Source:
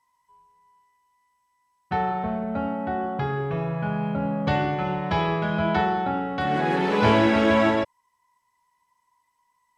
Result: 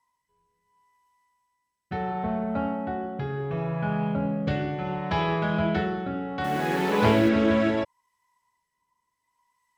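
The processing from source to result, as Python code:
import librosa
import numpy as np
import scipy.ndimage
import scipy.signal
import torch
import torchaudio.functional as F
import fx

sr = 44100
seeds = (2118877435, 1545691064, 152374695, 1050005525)

y = fx.delta_hold(x, sr, step_db=-35.0, at=(6.44, 7.29))
y = fx.rotary(y, sr, hz=0.7)
y = fx.doppler_dist(y, sr, depth_ms=0.1)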